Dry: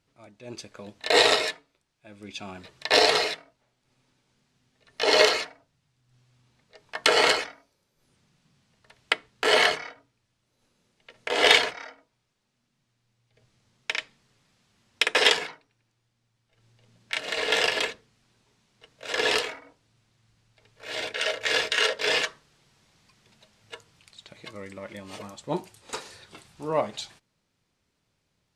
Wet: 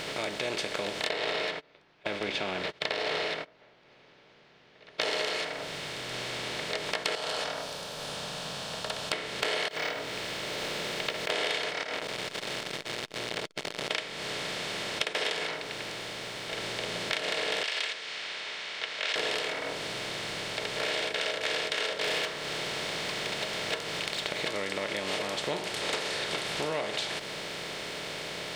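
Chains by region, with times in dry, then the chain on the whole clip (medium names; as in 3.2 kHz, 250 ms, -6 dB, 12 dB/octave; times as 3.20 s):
1.09–5.01 s: gate -51 dBFS, range -54 dB + compressor with a negative ratio -22 dBFS, ratio -0.5 + distance through air 310 m
7.15–9.13 s: static phaser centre 870 Hz, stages 4 + compression 4:1, threshold -37 dBFS
9.68–11.30 s: careless resampling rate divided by 2×, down filtered, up hold + compressor with a negative ratio -39 dBFS, ratio -0.5
11.83–13.91 s: compressor with a negative ratio -56 dBFS + doubling 23 ms -13 dB + transformer saturation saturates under 1.9 kHz
17.63–19.16 s: level-controlled noise filter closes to 2.6 kHz, open at -23 dBFS + Butterworth band-pass 3.6 kHz, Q 0.71
22.04–24.46 s: median filter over 3 samples + overload inside the chain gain 22.5 dB
whole clip: spectral levelling over time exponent 0.4; compression 6:1, threshold -29 dBFS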